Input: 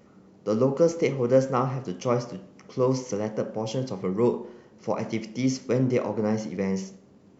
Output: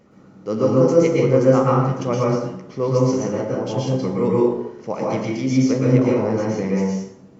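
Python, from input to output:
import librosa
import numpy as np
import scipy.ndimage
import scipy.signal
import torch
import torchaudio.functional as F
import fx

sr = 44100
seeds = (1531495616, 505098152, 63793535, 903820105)

y = fx.high_shelf(x, sr, hz=5800.0, db=-4.0)
y = fx.rev_plate(y, sr, seeds[0], rt60_s=0.75, hf_ratio=0.65, predelay_ms=105, drr_db=-4.0)
y = y * librosa.db_to_amplitude(1.0)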